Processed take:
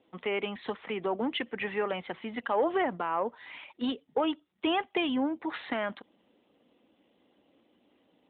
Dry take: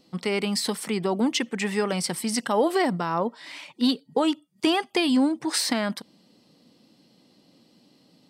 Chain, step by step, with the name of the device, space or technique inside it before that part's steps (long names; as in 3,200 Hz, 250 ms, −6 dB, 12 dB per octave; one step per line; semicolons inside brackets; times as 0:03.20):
telephone (band-pass filter 360–3,400 Hz; soft clipping −14 dBFS, distortion −23 dB; level −2 dB; AMR narrowband 12.2 kbit/s 8,000 Hz)